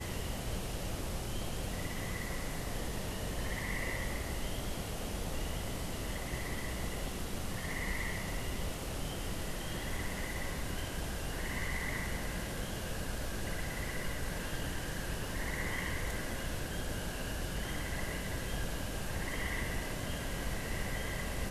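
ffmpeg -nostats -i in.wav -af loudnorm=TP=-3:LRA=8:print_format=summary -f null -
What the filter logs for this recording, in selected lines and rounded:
Input Integrated:    -38.5 LUFS
Input True Peak:     -22.8 dBTP
Input LRA:             0.9 LU
Input Threshold:     -48.5 LUFS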